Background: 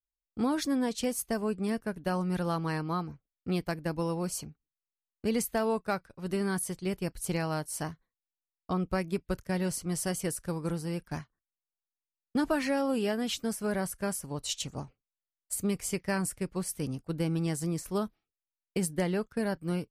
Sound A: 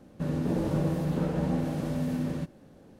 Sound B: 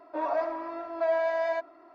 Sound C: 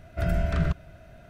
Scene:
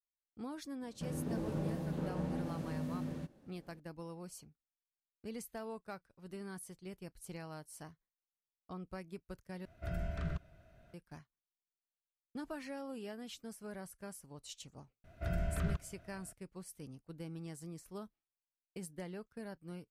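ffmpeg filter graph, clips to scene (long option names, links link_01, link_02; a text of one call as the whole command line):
ffmpeg -i bed.wav -i cue0.wav -i cue1.wav -i cue2.wav -filter_complex "[3:a]asplit=2[link_01][link_02];[0:a]volume=-15.5dB,asplit=2[link_03][link_04];[link_03]atrim=end=9.654[link_05];[link_01]atrim=end=1.29,asetpts=PTS-STARTPTS,volume=-13.5dB[link_06];[link_04]atrim=start=10.936[link_07];[1:a]atrim=end=2.99,asetpts=PTS-STARTPTS,volume=-10dB,afade=type=in:duration=0.004:curve=hsin,afade=type=out:start_time=2.986:duration=0.004:curve=hsin,adelay=810[link_08];[link_02]atrim=end=1.29,asetpts=PTS-STARTPTS,volume=-10.5dB,afade=type=in:duration=0.004:curve=hsin,afade=type=out:start_time=1.286:duration=0.004:curve=hsin,adelay=15040[link_09];[link_05][link_06]acrossfade=duration=0.004:curve1=hsin:curve2=hsin[link_10];[link_10][link_07]acrossfade=duration=0.004:curve1=hsin:curve2=hsin[link_11];[link_11][link_08][link_09]amix=inputs=3:normalize=0" out.wav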